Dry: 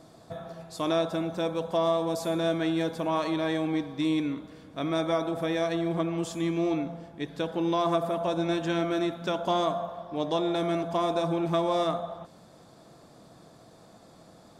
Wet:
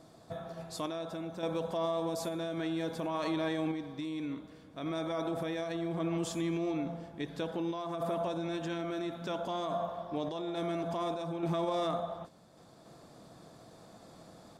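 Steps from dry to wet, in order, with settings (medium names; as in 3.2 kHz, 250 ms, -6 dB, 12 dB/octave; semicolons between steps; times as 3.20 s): peak limiter -24.5 dBFS, peak gain reduction 9.5 dB; random-step tremolo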